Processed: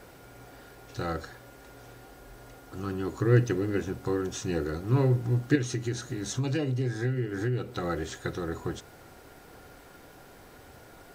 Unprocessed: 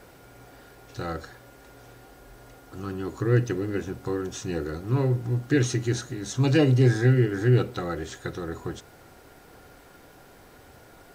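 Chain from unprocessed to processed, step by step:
0:05.55–0:07.84: downward compressor 5 to 1, threshold −27 dBFS, peak gain reduction 11.5 dB

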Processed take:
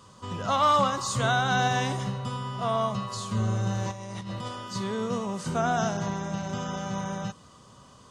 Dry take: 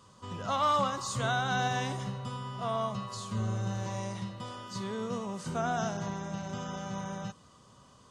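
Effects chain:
0:03.91–0:04.48: compressor whose output falls as the input rises −42 dBFS, ratio −1
level +5.5 dB

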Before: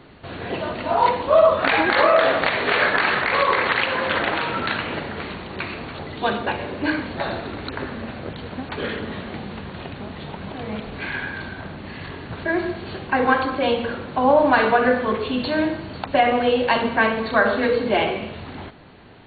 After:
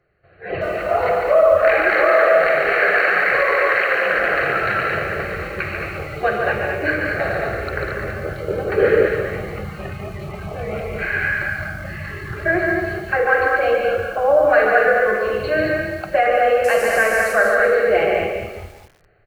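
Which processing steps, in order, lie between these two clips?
0:16.64–0:17.33: linear delta modulator 64 kbit/s, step −25.5 dBFS
automatic gain control gain up to 6 dB
on a send: loudspeakers that aren't time-aligned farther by 49 metres −5 dB, 76 metres −6 dB
on the sum: noise reduction from a noise print of the clip's start 17 dB
phaser with its sweep stopped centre 950 Hz, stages 6
in parallel at −1 dB: brickwall limiter −10 dBFS, peak gain reduction 9 dB
0:08.48–0:09.08: on the sum: parametric band 390 Hz +11.5 dB 1.2 octaves
feedback echo at a low word length 197 ms, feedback 35%, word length 6 bits, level −9 dB
level −4.5 dB

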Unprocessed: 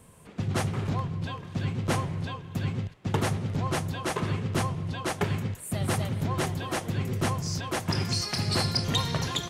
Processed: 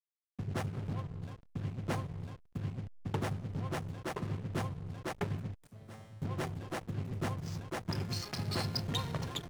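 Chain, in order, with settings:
slack as between gear wheels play −27.5 dBFS
0:05.67–0:06.22: tuned comb filter 110 Hz, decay 1.1 s, harmonics all, mix 90%
level −7.5 dB

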